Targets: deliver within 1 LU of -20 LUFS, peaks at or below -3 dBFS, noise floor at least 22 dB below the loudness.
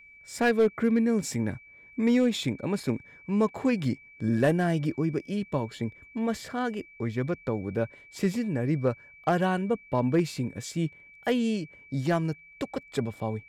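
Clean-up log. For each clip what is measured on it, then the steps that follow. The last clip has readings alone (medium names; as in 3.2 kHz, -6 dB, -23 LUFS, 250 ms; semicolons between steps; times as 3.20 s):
clipped samples 0.3%; clipping level -16.0 dBFS; steady tone 2.3 kHz; tone level -50 dBFS; loudness -28.5 LUFS; peak level -16.0 dBFS; loudness target -20.0 LUFS
-> clip repair -16 dBFS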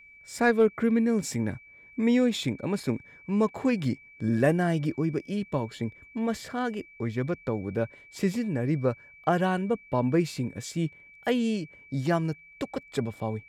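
clipped samples 0.0%; steady tone 2.3 kHz; tone level -50 dBFS
-> band-stop 2.3 kHz, Q 30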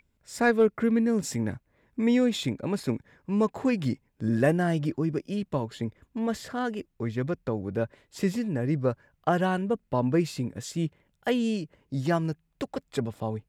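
steady tone not found; loudness -28.5 LUFS; peak level -10.0 dBFS; loudness target -20.0 LUFS
-> trim +8.5 dB; peak limiter -3 dBFS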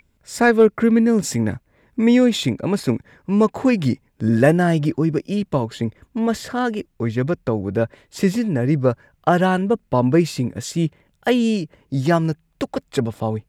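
loudness -20.0 LUFS; peak level -3.0 dBFS; noise floor -64 dBFS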